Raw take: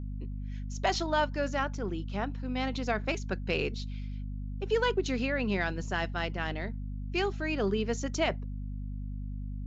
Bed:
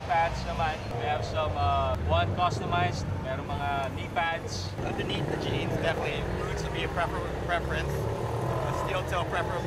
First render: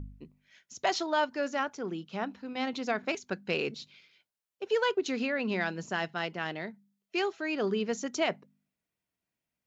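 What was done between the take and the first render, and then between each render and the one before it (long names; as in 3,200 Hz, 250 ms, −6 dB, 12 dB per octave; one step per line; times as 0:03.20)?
hum removal 50 Hz, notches 5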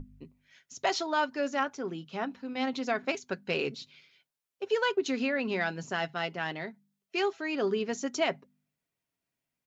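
mains-hum notches 50/100/150 Hz
comb filter 7.4 ms, depth 36%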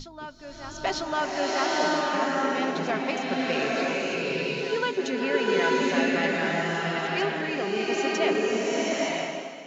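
backwards echo 948 ms −12 dB
slow-attack reverb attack 900 ms, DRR −5.5 dB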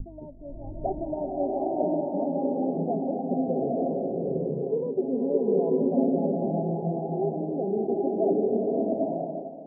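Butterworth low-pass 780 Hz 72 dB per octave
low-shelf EQ 140 Hz +10.5 dB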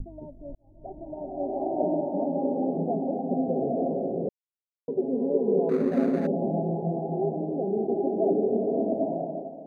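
0:00.55–0:01.81: fade in
0:04.29–0:04.88: silence
0:05.69–0:06.27: running median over 41 samples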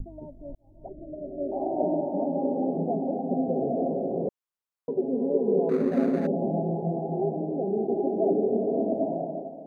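0:00.88–0:01.52: Butterworth low-pass 640 Hz 96 dB per octave
0:04.11–0:04.98: parametric band 1,100 Hz +7.5 dB 1 octave
0:07.20–0:08.00: Butterworth low-pass 1,200 Hz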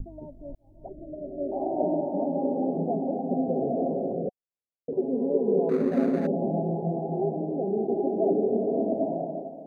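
0:04.13–0:04.93: Chebyshev low-pass with heavy ripple 750 Hz, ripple 3 dB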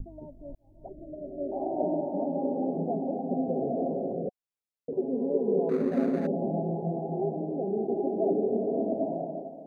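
level −2.5 dB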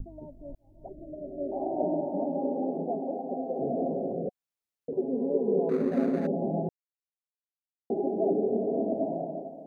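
0:02.26–0:03.58: high-pass filter 150 Hz → 420 Hz
0:06.69–0:07.90: silence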